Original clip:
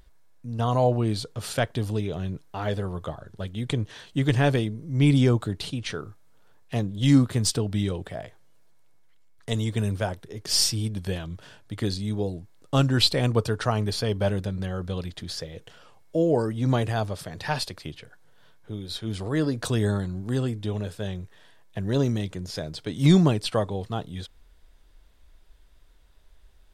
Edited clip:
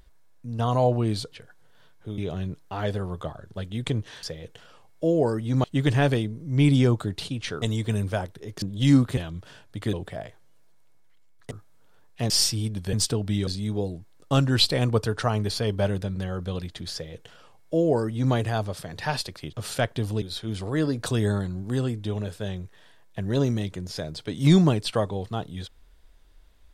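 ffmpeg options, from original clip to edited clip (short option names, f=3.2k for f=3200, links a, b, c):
-filter_complex "[0:a]asplit=15[a][b][c][d][e][f][g][h][i][j][k][l][m][n][o];[a]atrim=end=1.322[p];[b]atrim=start=17.948:end=18.812[q];[c]atrim=start=2.008:end=4.062[r];[d]atrim=start=15.348:end=16.762[s];[e]atrim=start=4.058:end=6.042[t];[f]atrim=start=9.498:end=10.502[u];[g]atrim=start=6.828:end=7.382[v];[h]atrim=start=11.128:end=11.892[w];[i]atrim=start=7.918:end=9.502[x];[j]atrim=start=6.038:end=6.832[y];[k]atrim=start=10.498:end=11.132[z];[l]atrim=start=7.378:end=7.922[aa];[m]atrim=start=11.888:end=17.952[ab];[n]atrim=start=1.318:end=2.012[ac];[o]atrim=start=18.808[ad];[p][q]acrossfade=d=0.004:c1=hsin:c2=hsin[ae];[ae][r]acrossfade=d=0.004:c1=hsin:c2=hsin[af];[af][s]acrossfade=d=0.004:c1=hsin:c2=hsin[ag];[ag][t]acrossfade=d=0.004:c1=hsin:c2=hsin[ah];[ah][u]acrossfade=d=0.004:c1=hsin:c2=hsin[ai];[ai][v]acrossfade=d=0.004:c1=hsin:c2=hsin[aj];[aj][w]acrossfade=d=0.004:c1=hsin:c2=hsin[ak];[ak][x]acrossfade=d=0.004:c1=hsin:c2=hsin[al];[al][y]acrossfade=d=0.004:c1=hsin:c2=hsin[am];[am][z]acrossfade=d=0.004:c1=hsin:c2=hsin[an];[an][aa]acrossfade=d=0.004:c1=hsin:c2=hsin[ao];[ao][ab]acrossfade=d=0.004:c1=hsin:c2=hsin[ap];[ap][ac]acrossfade=d=0.004:c1=hsin:c2=hsin[aq];[aq][ad]acrossfade=d=0.004:c1=hsin:c2=hsin"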